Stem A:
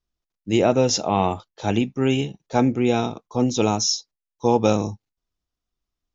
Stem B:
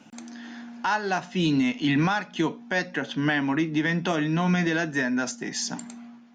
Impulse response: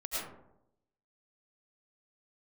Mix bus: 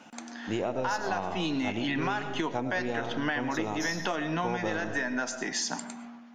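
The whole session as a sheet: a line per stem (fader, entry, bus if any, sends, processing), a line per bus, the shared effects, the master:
−9.0 dB, 0.00 s, send −11 dB, gain on one half-wave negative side −3 dB
−0.5 dB, 0.00 s, send −16 dB, low-shelf EQ 270 Hz −8.5 dB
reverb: on, RT60 0.80 s, pre-delay 65 ms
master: parametric band 910 Hz +5.5 dB 2.3 octaves; downward compressor, threshold −27 dBFS, peak gain reduction 12 dB

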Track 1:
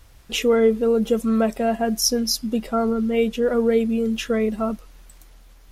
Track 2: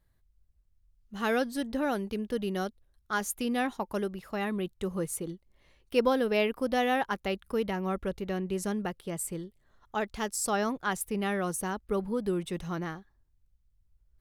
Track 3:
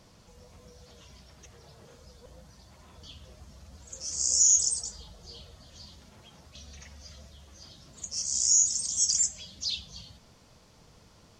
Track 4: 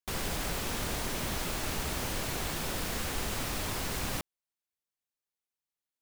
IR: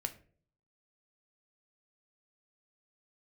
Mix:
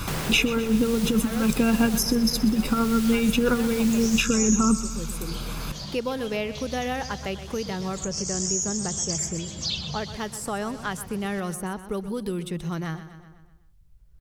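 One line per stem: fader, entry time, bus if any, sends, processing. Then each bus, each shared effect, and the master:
+1.0 dB, 0.00 s, no send, echo send −15.5 dB, comb filter 0.8 ms, depth 95%; compressor whose output falls as the input rises −21 dBFS, ratio −0.5
−10.0 dB, 0.00 s, no send, echo send −14.5 dB, no processing
−2.0 dB, 0.00 s, no send, echo send −10 dB, no processing
−5.0 dB, 0.00 s, no send, no echo send, no processing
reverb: not used
echo: repeating echo 125 ms, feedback 46%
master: parametric band 150 Hz +11 dB 0.32 octaves; multiband upward and downward compressor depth 70%

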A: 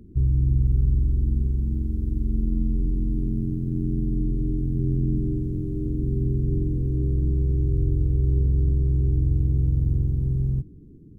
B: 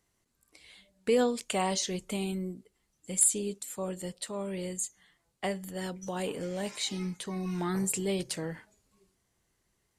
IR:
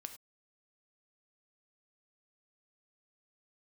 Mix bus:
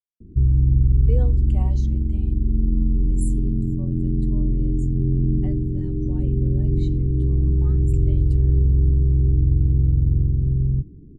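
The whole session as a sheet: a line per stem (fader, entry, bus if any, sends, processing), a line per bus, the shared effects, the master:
+1.5 dB, 0.20 s, no send, Butterworth low-pass 500 Hz 96 dB per octave; low-shelf EQ 130 Hz +3.5 dB
−9.5 dB, 0.00 s, send −8 dB, parametric band 8,100 Hz −3.5 dB 0.92 octaves; every bin expanded away from the loudest bin 1.5 to 1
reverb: on, pre-delay 3 ms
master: no processing

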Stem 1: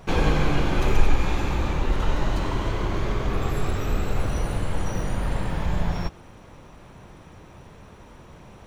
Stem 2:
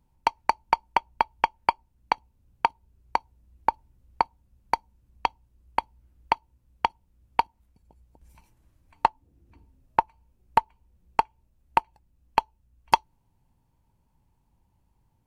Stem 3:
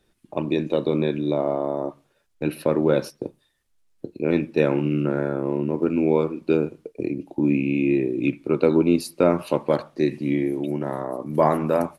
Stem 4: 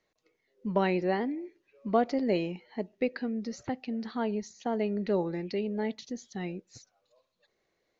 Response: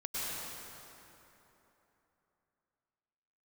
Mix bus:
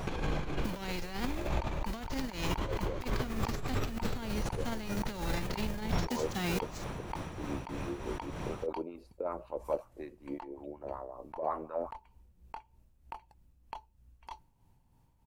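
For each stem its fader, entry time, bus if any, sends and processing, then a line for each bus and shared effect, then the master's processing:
+2.5 dB, 0.00 s, no send, brickwall limiter −15 dBFS, peak gain reduction 10.5 dB; downward compressor 3 to 1, threshold −32 dBFS, peak gain reduction 10.5 dB
−1.5 dB, 1.35 s, no send, no processing
−11.0 dB, 0.00 s, no send, LFO wah 5.4 Hz 480–1,100 Hz, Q 2.8
+0.5 dB, 0.00 s, no send, spectral envelope flattened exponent 0.3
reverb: not used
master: compressor whose output falls as the input rises −32 dBFS, ratio −1; amplitude tremolo 3.2 Hz, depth 50%

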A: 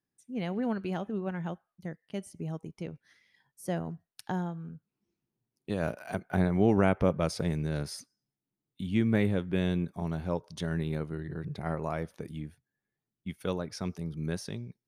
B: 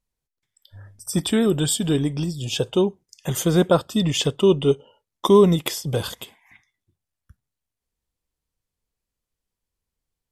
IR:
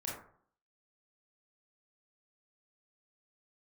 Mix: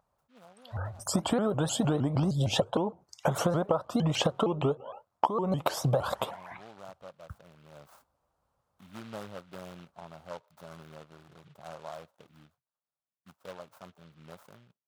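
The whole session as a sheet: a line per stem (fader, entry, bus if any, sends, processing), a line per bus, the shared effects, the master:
−19.0 dB, 0.00 s, no send, short delay modulated by noise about 2,600 Hz, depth 0.17 ms; automatic ducking −12 dB, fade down 0.65 s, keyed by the second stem
+2.5 dB, 0.00 s, no send, spectral tilt −2 dB per octave; downward compressor 5 to 1, threshold −23 dBFS, peak gain reduction 15 dB; pitch modulation by a square or saw wave saw up 6.5 Hz, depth 250 cents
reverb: not used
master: high-pass filter 86 Hz; flat-topped bell 880 Hz +15.5 dB; downward compressor 10 to 1, threshold −23 dBFS, peak gain reduction 19 dB

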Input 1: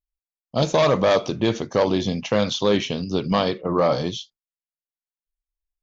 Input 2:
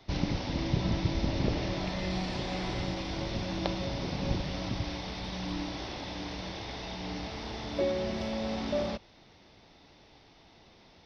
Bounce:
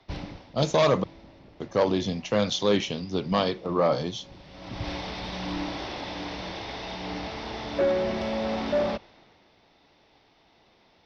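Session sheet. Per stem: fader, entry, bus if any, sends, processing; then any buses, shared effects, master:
−5.0 dB, 0.00 s, muted 0:01.04–0:01.60, no send, no processing
−5.0 dB, 0.00 s, no send, spectral tilt −2 dB per octave; mid-hump overdrive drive 21 dB, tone 4,300 Hz, clips at −9 dBFS; automatic ducking −20 dB, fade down 0.60 s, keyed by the first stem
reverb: not used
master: multiband upward and downward expander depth 40%

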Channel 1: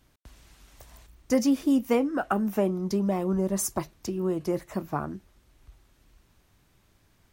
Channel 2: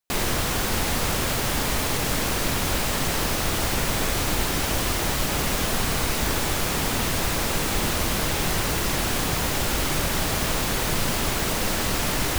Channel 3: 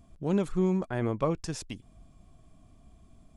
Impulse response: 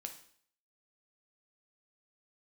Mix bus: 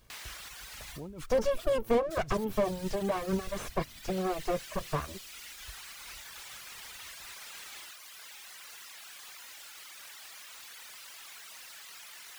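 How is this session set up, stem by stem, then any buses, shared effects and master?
+2.5 dB, 0.00 s, no bus, no send, lower of the sound and its delayed copy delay 1.8 ms
0.0 dB, 0.00 s, bus A, no send, high-pass filter 1,500 Hz 12 dB per octave; automatic ducking −21 dB, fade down 0.55 s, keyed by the first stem
−11.5 dB, 0.75 s, bus A, no send, automatic gain control gain up to 16 dB
bus A: 0.0 dB, compressor whose output falls as the input rises −41 dBFS, ratio −1; brickwall limiter −31.5 dBFS, peak gain reduction 9 dB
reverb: not used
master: reverb reduction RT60 1.6 s; slew-rate limiting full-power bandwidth 43 Hz

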